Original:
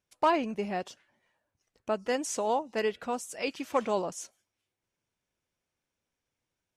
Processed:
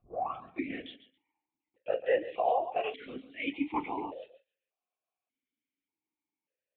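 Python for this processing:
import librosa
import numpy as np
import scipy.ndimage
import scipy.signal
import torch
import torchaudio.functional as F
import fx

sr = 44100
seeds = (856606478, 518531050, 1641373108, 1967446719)

p1 = fx.tape_start_head(x, sr, length_s=0.7)
p2 = fx.noise_reduce_blind(p1, sr, reduce_db=12)
p3 = fx.over_compress(p2, sr, threshold_db=-39.0, ratio=-1.0)
p4 = p2 + F.gain(torch.from_numpy(p3), -1.5).numpy()
p5 = fx.doubler(p4, sr, ms=35.0, db=-13.5)
p6 = p5 + fx.echo_feedback(p5, sr, ms=135, feedback_pct=19, wet_db=-14, dry=0)
p7 = fx.lpc_vocoder(p6, sr, seeds[0], excitation='whisper', order=16)
p8 = fx.vowel_held(p7, sr, hz=1.7)
y = F.gain(torch.from_numpy(p8), 7.5).numpy()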